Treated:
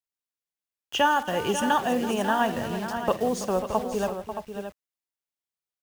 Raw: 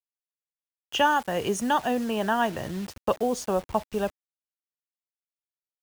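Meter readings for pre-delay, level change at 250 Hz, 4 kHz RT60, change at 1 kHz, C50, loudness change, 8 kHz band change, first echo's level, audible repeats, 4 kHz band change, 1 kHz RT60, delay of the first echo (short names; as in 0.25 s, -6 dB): none, +1.0 dB, none, +1.0 dB, none, +0.5 dB, +1.0 dB, -16.5 dB, 5, +1.0 dB, none, 49 ms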